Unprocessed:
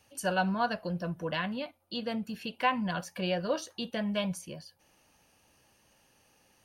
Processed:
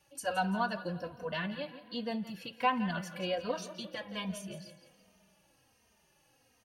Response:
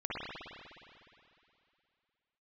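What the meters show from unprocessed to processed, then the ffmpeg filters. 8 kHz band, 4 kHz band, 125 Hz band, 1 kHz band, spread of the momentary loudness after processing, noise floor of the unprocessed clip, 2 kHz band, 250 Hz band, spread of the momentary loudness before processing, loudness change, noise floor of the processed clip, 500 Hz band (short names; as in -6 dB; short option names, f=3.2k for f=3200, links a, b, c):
-3.5 dB, -3.0 dB, -4.0 dB, -1.5 dB, 11 LU, -67 dBFS, -3.0 dB, -3.5 dB, 9 LU, -3.0 dB, -70 dBFS, -3.5 dB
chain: -filter_complex "[0:a]aecho=1:1:169|338|507|676:0.224|0.094|0.0395|0.0166,asplit=2[a][b];[1:a]atrim=start_sample=2205[c];[b][c]afir=irnorm=-1:irlink=0,volume=-22dB[d];[a][d]amix=inputs=2:normalize=0,asplit=2[e][f];[f]adelay=3,afreqshift=-1.3[g];[e][g]amix=inputs=2:normalize=1,volume=-1dB"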